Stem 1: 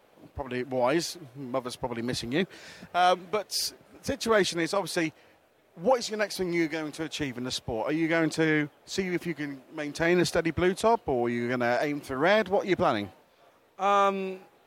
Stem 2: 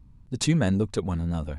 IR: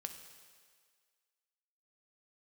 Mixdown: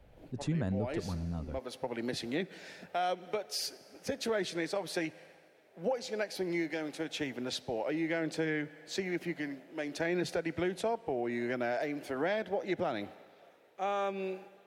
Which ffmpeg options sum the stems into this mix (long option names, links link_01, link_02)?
-filter_complex "[0:a]highpass=frequency=590:poles=1,equalizer=frequency=1100:width_type=o:width=0.61:gain=-11.5,dynaudnorm=framelen=110:gausssize=3:maxgain=3.5dB,volume=-1dB,asplit=2[link_01][link_02];[link_02]volume=-8.5dB[link_03];[1:a]volume=-9dB,asplit=2[link_04][link_05];[link_05]apad=whole_len=646577[link_06];[link_01][link_06]sidechaincompress=threshold=-51dB:ratio=4:attack=16:release=320[link_07];[2:a]atrim=start_sample=2205[link_08];[link_03][link_08]afir=irnorm=-1:irlink=0[link_09];[link_07][link_04][link_09]amix=inputs=3:normalize=0,highshelf=frequency=2500:gain=-11.5,acrossover=split=160[link_10][link_11];[link_11]acompressor=threshold=-32dB:ratio=3[link_12];[link_10][link_12]amix=inputs=2:normalize=0"